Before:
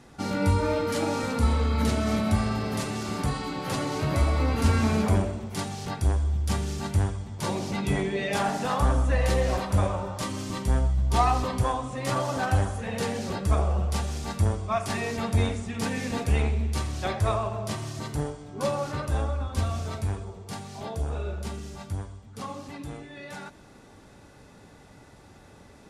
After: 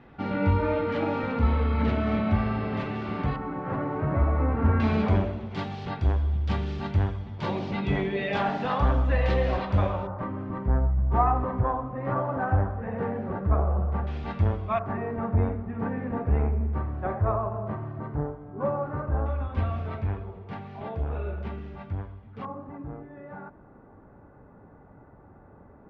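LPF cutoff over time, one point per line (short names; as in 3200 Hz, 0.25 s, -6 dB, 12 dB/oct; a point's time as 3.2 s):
LPF 24 dB/oct
2900 Hz
from 3.36 s 1700 Hz
from 4.8 s 3600 Hz
from 10.07 s 1600 Hz
from 14.07 s 3000 Hz
from 14.79 s 1500 Hz
from 19.26 s 2600 Hz
from 22.45 s 1400 Hz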